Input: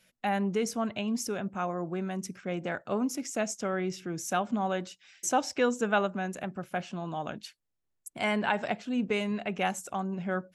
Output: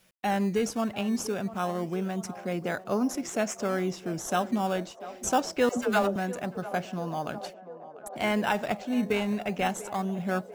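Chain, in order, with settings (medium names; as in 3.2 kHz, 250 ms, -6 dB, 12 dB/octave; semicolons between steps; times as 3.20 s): in parallel at -9 dB: decimation with a swept rate 15×, swing 100% 0.25 Hz; 5.69–6.16 s: on the sum: phase dispersion lows, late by 90 ms, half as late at 440 Hz; bit crusher 11-bit; band-passed feedback delay 693 ms, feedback 78%, band-pass 630 Hz, level -14 dB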